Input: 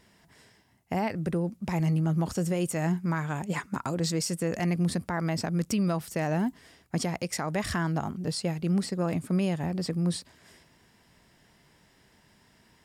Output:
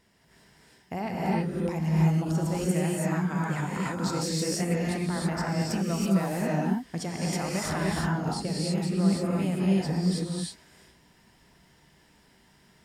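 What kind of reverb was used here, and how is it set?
gated-style reverb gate 350 ms rising, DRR -5 dB; trim -5 dB

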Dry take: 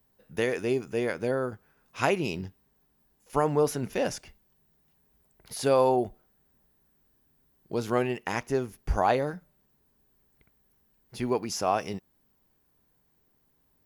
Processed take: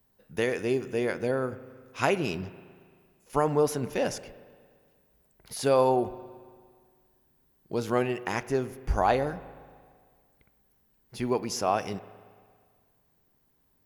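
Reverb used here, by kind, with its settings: spring tank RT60 1.9 s, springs 38/57 ms, chirp 55 ms, DRR 15.5 dB

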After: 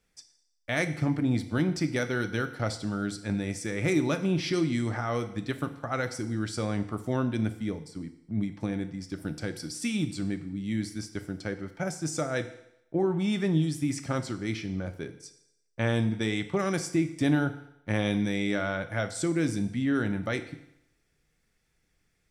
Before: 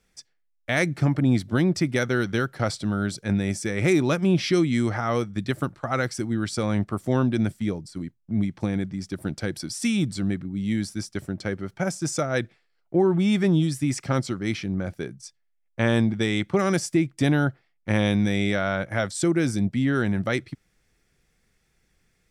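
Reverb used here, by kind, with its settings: FDN reverb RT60 0.8 s, low-frequency decay 0.8×, high-frequency decay 1×, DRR 8 dB; trim -5.5 dB

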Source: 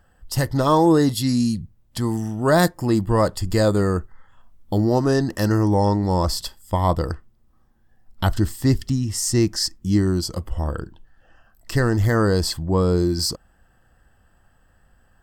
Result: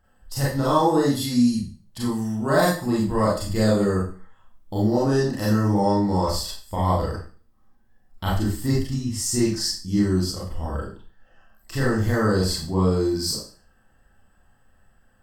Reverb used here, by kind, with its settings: Schroeder reverb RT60 0.4 s, combs from 29 ms, DRR -6.5 dB; trim -9 dB

